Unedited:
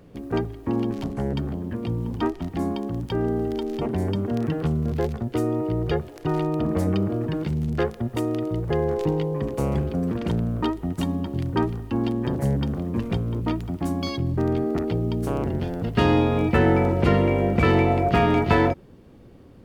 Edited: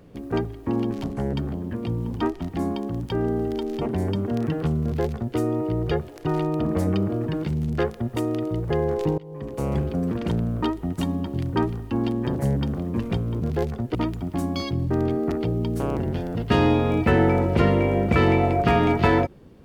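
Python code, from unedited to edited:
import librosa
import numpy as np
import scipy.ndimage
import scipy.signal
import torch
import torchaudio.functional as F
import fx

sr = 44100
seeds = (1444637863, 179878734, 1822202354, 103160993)

y = fx.edit(x, sr, fx.duplicate(start_s=4.84, length_s=0.53, to_s=13.42),
    fx.fade_in_from(start_s=9.18, length_s=0.59, floor_db=-24.0), tone=tone)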